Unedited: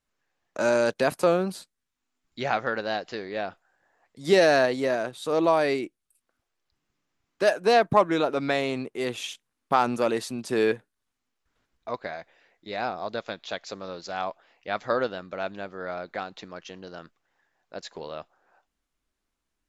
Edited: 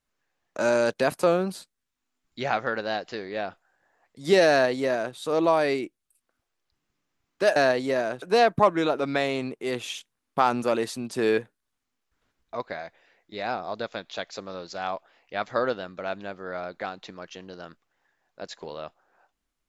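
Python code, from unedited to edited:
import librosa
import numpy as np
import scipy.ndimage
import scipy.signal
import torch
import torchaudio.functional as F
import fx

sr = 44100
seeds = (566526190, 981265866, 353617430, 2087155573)

y = fx.edit(x, sr, fx.duplicate(start_s=4.5, length_s=0.66, to_s=7.56), tone=tone)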